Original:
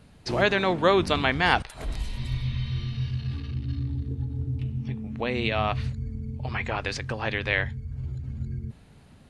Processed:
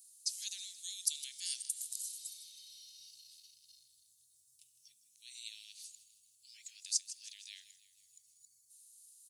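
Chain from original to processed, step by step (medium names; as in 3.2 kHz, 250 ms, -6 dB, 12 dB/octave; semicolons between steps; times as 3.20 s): inverse Chebyshev high-pass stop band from 1.3 kHz, stop band 80 dB; on a send: frequency-shifting echo 158 ms, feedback 51%, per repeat +32 Hz, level -15 dB; on the sum: trim +14.5 dB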